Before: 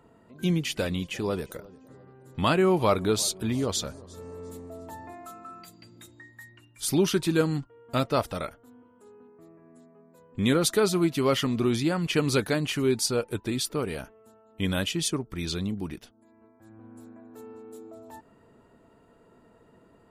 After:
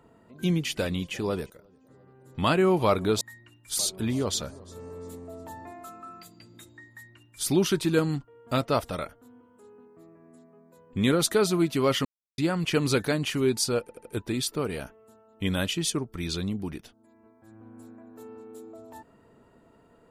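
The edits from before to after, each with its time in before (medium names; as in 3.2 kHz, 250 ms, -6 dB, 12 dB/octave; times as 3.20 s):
1.50–2.50 s: fade in linear, from -14.5 dB
6.32–6.90 s: copy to 3.21 s
11.47–11.80 s: mute
13.23 s: stutter 0.08 s, 4 plays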